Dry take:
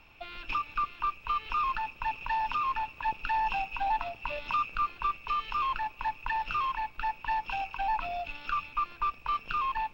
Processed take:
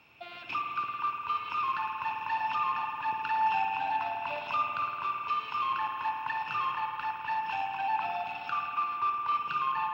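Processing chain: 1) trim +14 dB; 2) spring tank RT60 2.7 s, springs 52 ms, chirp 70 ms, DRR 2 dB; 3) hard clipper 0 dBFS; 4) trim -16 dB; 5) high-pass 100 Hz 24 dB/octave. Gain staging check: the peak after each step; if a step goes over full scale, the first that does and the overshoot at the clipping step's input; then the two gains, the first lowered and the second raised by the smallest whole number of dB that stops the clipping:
-4.5 dBFS, -2.0 dBFS, -2.0 dBFS, -18.0 dBFS, -19.0 dBFS; nothing clips

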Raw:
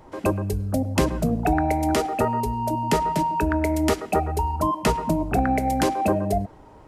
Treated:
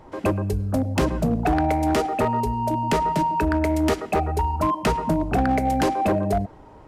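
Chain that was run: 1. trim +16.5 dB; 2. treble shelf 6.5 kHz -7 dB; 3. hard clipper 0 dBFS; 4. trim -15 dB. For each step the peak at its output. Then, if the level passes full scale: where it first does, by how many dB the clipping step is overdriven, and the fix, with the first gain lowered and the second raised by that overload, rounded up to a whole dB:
+8.5 dBFS, +8.5 dBFS, 0.0 dBFS, -15.0 dBFS; step 1, 8.5 dB; step 1 +7.5 dB, step 4 -6 dB

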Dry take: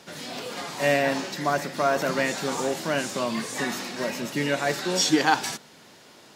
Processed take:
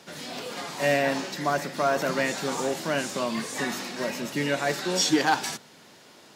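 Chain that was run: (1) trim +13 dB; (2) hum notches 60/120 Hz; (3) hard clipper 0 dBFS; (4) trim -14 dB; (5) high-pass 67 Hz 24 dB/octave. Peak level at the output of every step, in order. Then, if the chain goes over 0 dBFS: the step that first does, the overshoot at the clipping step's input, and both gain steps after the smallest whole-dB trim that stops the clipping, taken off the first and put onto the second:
+7.5 dBFS, +7.5 dBFS, 0.0 dBFS, -14.0 dBFS, -11.5 dBFS; step 1, 7.5 dB; step 1 +5 dB, step 4 -6 dB

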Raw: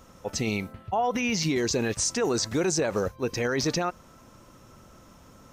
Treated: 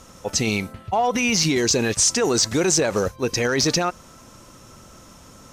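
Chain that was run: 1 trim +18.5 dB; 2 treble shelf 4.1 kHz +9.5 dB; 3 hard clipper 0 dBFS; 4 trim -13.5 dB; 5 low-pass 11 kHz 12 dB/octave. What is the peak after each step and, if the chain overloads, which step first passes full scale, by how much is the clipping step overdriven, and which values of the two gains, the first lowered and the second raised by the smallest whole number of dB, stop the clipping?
+2.0 dBFS, +9.5 dBFS, 0.0 dBFS, -13.5 dBFS, -11.5 dBFS; step 1, 9.5 dB; step 1 +8.5 dB, step 4 -3.5 dB

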